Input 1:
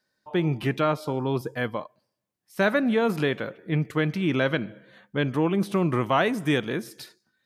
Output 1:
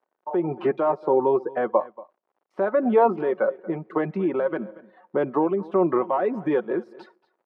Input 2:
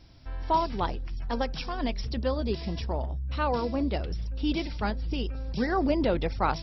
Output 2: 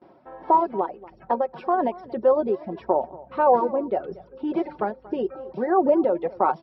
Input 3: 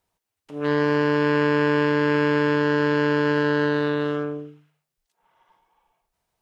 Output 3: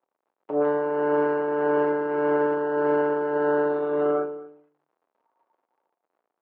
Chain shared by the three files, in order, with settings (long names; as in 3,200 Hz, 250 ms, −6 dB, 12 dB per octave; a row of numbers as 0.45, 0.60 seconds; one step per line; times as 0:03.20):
stylus tracing distortion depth 0.034 ms
noise gate with hold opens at −45 dBFS
reverb reduction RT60 0.94 s
comb filter 5.4 ms, depth 46%
in parallel at +1.5 dB: downward compressor, threshold −32 dBFS
on the sum: brickwall limiter −16 dBFS
amplitude tremolo 1.7 Hz, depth 46%
surface crackle 130 per second −54 dBFS
flat-topped band-pass 590 Hz, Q 0.8
single-tap delay 233 ms −20 dB
loudness normalisation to −24 LKFS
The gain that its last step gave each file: +9.5, +9.0, +7.5 decibels